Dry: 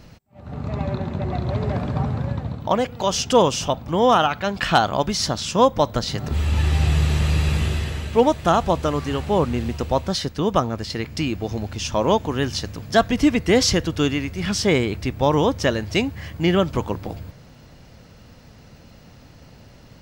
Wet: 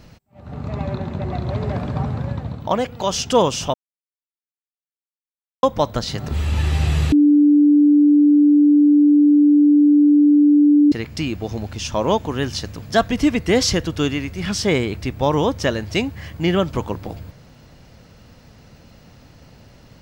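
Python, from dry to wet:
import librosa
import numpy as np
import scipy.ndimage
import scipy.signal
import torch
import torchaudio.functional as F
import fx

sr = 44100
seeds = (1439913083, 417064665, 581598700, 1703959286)

y = fx.edit(x, sr, fx.silence(start_s=3.74, length_s=1.89),
    fx.bleep(start_s=7.12, length_s=3.8, hz=293.0, db=-9.0), tone=tone)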